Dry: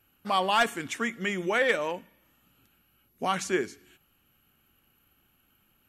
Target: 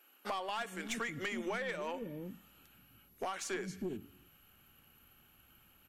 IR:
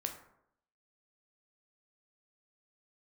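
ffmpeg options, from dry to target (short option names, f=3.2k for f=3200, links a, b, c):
-filter_complex "[0:a]acrossover=split=300[a][b];[a]adelay=320[c];[c][b]amix=inputs=2:normalize=0,acompressor=threshold=-36dB:ratio=20,aeval=exprs='(tanh(44.7*val(0)+0.2)-tanh(0.2))/44.7':c=same,volume=3.5dB"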